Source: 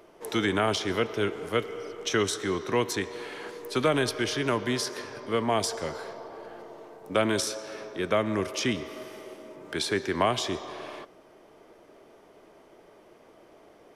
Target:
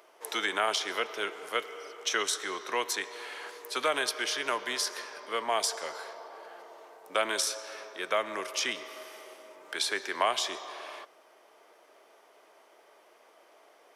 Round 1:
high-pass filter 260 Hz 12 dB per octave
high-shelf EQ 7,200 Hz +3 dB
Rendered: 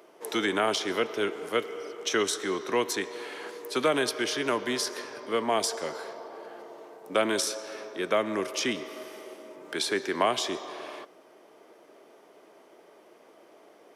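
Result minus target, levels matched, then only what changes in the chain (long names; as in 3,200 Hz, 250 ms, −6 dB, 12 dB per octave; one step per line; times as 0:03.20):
250 Hz band +10.0 dB
change: high-pass filter 690 Hz 12 dB per octave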